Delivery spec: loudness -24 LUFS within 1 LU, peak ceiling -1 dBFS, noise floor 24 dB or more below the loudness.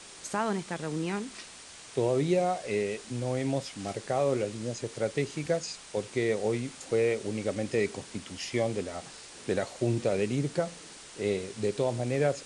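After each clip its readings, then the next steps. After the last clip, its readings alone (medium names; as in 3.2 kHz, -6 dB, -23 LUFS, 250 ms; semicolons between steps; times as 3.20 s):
noise floor -48 dBFS; noise floor target -55 dBFS; loudness -31.0 LUFS; peak level -15.5 dBFS; loudness target -24.0 LUFS
-> noise print and reduce 7 dB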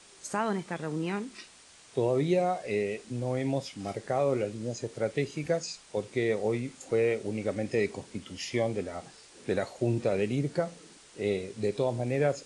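noise floor -55 dBFS; loudness -31.0 LUFS; peak level -15.5 dBFS; loudness target -24.0 LUFS
-> trim +7 dB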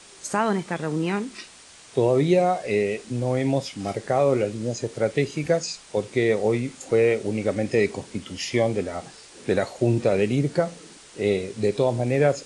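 loudness -24.0 LUFS; peak level -8.5 dBFS; noise floor -48 dBFS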